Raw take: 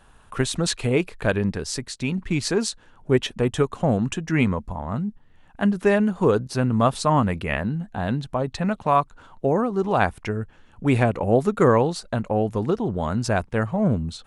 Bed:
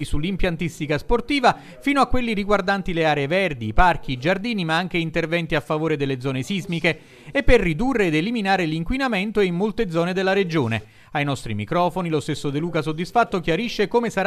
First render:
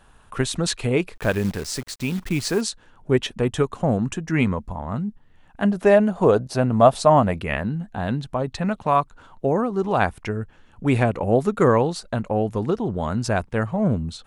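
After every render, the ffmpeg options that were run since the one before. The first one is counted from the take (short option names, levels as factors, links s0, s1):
-filter_complex "[0:a]asettb=1/sr,asplit=3[s0][s1][s2];[s0]atrim=end=1.154[s3];[s1]atrim=start=1.15:end=2.61,asetpts=PTS-STARTPTS,afade=t=in:d=0.004:c=qsin,afade=t=out:st=1.456:d=0.004:c=qsin,acrusher=bits=7:dc=4:mix=0:aa=0.000001[s4];[s2]atrim=start=2.606[s5];[s3][s4]acrossfade=d=0.004:c1=hsin:c2=qsin[s6];[s6][s5]acrossfade=d=0.004:c1=qsin:c2=hsin,asettb=1/sr,asplit=3[s7][s8][s9];[s7]atrim=end=3.774[s10];[s8]atrim=start=3.77:end=4.34,asetpts=PTS-STARTPTS,afade=t=in:d=0.004:c=qsin,afade=t=out:st=0.566:d=0.004:c=qsin,equalizer=f=3200:t=o:w=1:g=-4.5[s11];[s9]atrim=start=4.336[s12];[s10][s11]acrossfade=d=0.004:c1=hsin:c2=qsin[s13];[s13][s12]acrossfade=d=0.004:c1=qsin:c2=hsin,asettb=1/sr,asplit=3[s14][s15][s16];[s14]atrim=end=5.644[s17];[s15]atrim=start=5.64:end=7.36,asetpts=PTS-STARTPTS,afade=t=in:d=0.004:c=qsin,afade=t=out:st=1.716:d=0.004:c=qsin,equalizer=f=660:w=2.5:g=10.5[s18];[s16]atrim=start=7.356[s19];[s17][s18]acrossfade=d=0.004:c1=hsin:c2=qsin[s20];[s20][s19]acrossfade=d=0.004:c1=qsin:c2=hsin"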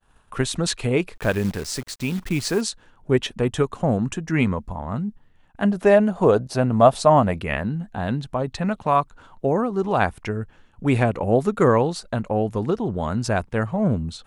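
-af "agate=range=0.0224:threshold=0.00501:ratio=3:detection=peak"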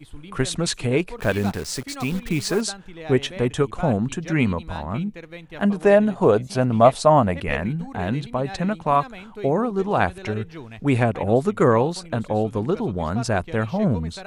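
-filter_complex "[1:a]volume=0.141[s0];[0:a][s0]amix=inputs=2:normalize=0"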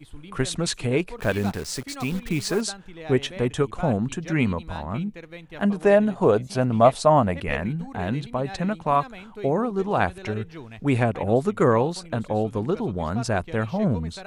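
-af "volume=0.794"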